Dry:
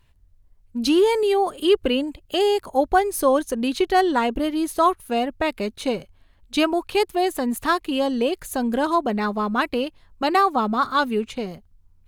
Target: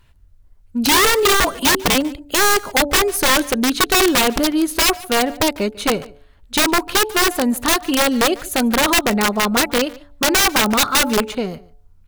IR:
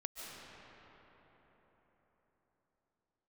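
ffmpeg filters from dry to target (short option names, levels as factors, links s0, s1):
-filter_complex "[0:a]equalizer=f=1400:w=6.8:g=6,bandreject=f=143.9:t=h:w=4,bandreject=f=287.8:t=h:w=4,bandreject=f=431.7:t=h:w=4,bandreject=f=575.6:t=h:w=4,bandreject=f=719.5:t=h:w=4,bandreject=f=863.4:t=h:w=4,asettb=1/sr,asplit=3[s0][s1][s2];[s0]atrim=end=1.404[s3];[s1]atrim=start=1.4:end=1.95,asetpts=PTS-STARTPTS,afade=t=in:d=0.004:c=qsin,afade=t=out:st=0.546:d=0.004:c=qsin,afreqshift=-49[s4];[s2]atrim=start=1.946[s5];[s3][s4]acrossfade=d=0.004:c1=hsin:c2=qsin[s6];[s6][s5]acrossfade=d=0.004:c1=qsin:c2=hsin,aeval=exprs='(mod(5.62*val(0)+1,2)-1)/5.62':c=same,asplit=2[s7][s8];[s8]adelay=145.8,volume=0.0891,highshelf=f=4000:g=-3.28[s9];[s7][s9]amix=inputs=2:normalize=0,volume=2"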